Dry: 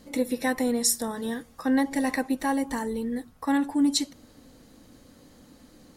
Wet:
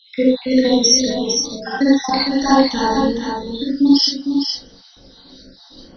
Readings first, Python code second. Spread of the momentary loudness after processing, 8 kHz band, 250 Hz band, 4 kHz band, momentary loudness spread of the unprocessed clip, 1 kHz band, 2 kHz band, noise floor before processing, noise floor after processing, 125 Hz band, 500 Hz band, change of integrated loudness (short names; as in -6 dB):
11 LU, +9.0 dB, +10.0 dB, +16.5 dB, 9 LU, +11.0 dB, +6.0 dB, -55 dBFS, -47 dBFS, n/a, +11.5 dB, +10.5 dB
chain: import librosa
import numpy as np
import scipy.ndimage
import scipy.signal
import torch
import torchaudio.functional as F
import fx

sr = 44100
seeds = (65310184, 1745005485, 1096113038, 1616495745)

p1 = fx.spec_dropout(x, sr, seeds[0], share_pct=71)
p2 = fx.rider(p1, sr, range_db=10, speed_s=2.0)
p3 = p1 + (p2 * 10.0 ** (2.0 / 20.0))
p4 = fx.quant_float(p3, sr, bits=6)
p5 = fx.brickwall_lowpass(p4, sr, high_hz=6100.0)
p6 = fx.high_shelf_res(p5, sr, hz=3000.0, db=6.5, q=3.0)
p7 = fx.doubler(p6, sr, ms=43.0, db=-6)
p8 = p7 + fx.echo_single(p7, sr, ms=456, db=-6.5, dry=0)
p9 = fx.rev_gated(p8, sr, seeds[1], gate_ms=100, shape='rising', drr_db=-7.0)
y = p9 * 10.0 ** (-1.0 / 20.0)